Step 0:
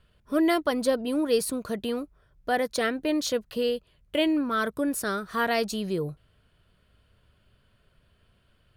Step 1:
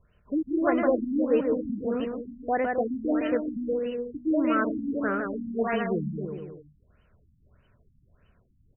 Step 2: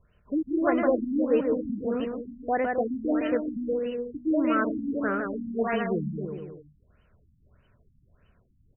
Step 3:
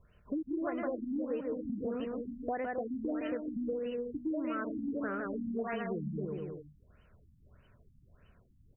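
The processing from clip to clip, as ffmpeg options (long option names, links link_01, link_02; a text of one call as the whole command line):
ffmpeg -i in.wav -af "aecho=1:1:160|296|411.6|509.9|593.4:0.631|0.398|0.251|0.158|0.1,afftfilt=real='re*lt(b*sr/1024,270*pow(3100/270,0.5+0.5*sin(2*PI*1.6*pts/sr)))':imag='im*lt(b*sr/1024,270*pow(3100/270,0.5+0.5*sin(2*PI*1.6*pts/sr)))':win_size=1024:overlap=0.75" out.wav
ffmpeg -i in.wav -af anull out.wav
ffmpeg -i in.wav -af "acompressor=threshold=-33dB:ratio=6" out.wav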